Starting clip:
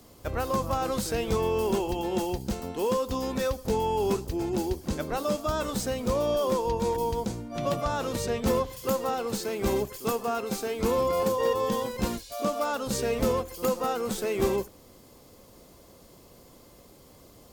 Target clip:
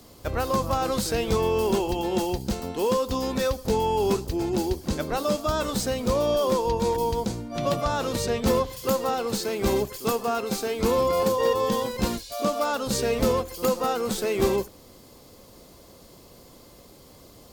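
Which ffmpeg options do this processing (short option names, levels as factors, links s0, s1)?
-af "equalizer=f=4300:t=o:w=0.66:g=3.5,volume=1.41"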